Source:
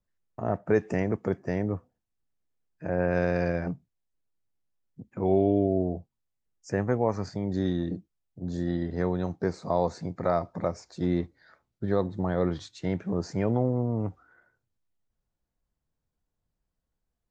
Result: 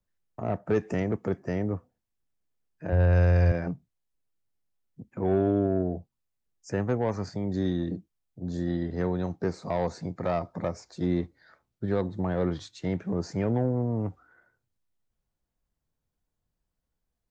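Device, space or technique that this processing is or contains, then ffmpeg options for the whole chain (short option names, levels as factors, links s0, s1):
one-band saturation: -filter_complex "[0:a]acrossover=split=310|3600[s0][s1][s2];[s1]asoftclip=type=tanh:threshold=0.0794[s3];[s0][s3][s2]amix=inputs=3:normalize=0,asettb=1/sr,asplit=3[s4][s5][s6];[s4]atrim=end=2.924[s7];[s5]atrim=start=2.92:end=3.52,asetpts=PTS-STARTPTS,afade=t=in:d=0.004:c=qsin,afade=t=out:st=0.596:d=0.004:c=qsin,lowshelf=f=130:t=q:w=1.5:g=13.5[s8];[s6]atrim=start=3.516[s9];[s7][s8]acrossfade=d=0.004:c1=hsin:c2=qsin[s10];[s10][s9]acrossfade=d=0.004:c1=qsin:c2=hsin"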